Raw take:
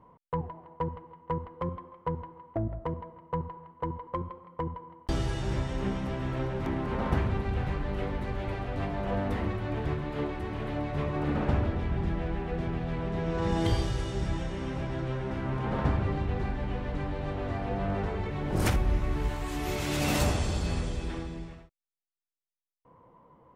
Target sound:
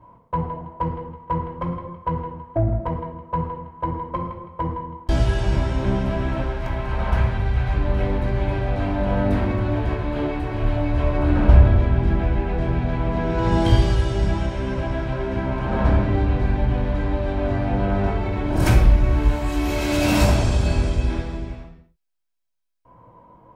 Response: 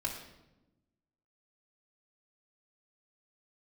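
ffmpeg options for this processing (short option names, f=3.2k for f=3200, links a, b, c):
-filter_complex "[0:a]asettb=1/sr,asplit=3[a][b][c];[a]atrim=end=6.424[d];[b]atrim=start=6.42:end=7.74,asetpts=PTS-STARTPTS,afade=t=in:d=0.004:c=qsin,afade=t=out:st=1.316:d=0.004:c=qsin,equalizer=f=290:t=o:w=1.5:g=-12[e];[c]atrim=start=7.736[f];[d][e]acrossfade=d=0.004:c1=hsin:c2=qsin[g];[g][f]acrossfade=d=0.004:c1=qsin:c2=hsin[h];[1:a]atrim=start_sample=2205,afade=t=out:st=0.32:d=0.01,atrim=end_sample=14553[i];[h][i]afir=irnorm=-1:irlink=0,asplit=3[j][k][l];[j]afade=t=out:st=10.61:d=0.02[m];[k]asubboost=boost=2.5:cutoff=110,afade=t=in:st=10.61:d=0.02,afade=t=out:st=11.8:d=0.02[n];[l]afade=t=in:st=11.8:d=0.02[o];[m][n][o]amix=inputs=3:normalize=0,volume=4.5dB"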